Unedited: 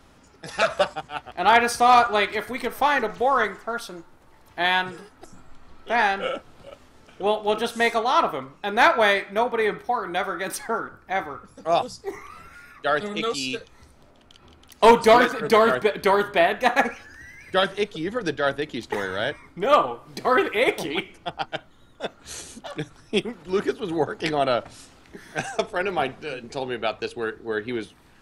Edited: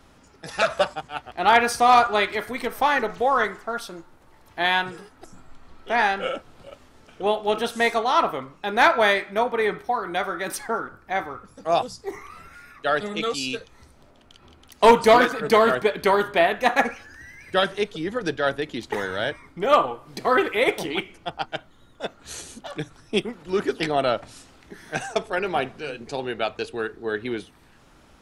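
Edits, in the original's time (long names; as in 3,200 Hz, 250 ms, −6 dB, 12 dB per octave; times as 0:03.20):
0:23.80–0:24.23: remove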